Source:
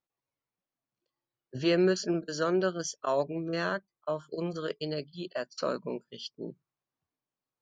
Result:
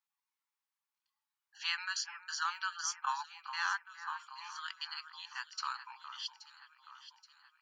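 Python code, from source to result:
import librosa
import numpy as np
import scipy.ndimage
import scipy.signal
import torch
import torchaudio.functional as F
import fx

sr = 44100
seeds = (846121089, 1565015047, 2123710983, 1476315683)

y = fx.brickwall_highpass(x, sr, low_hz=790.0)
y = fx.echo_alternate(y, sr, ms=413, hz=2000.0, feedback_pct=70, wet_db=-10.5)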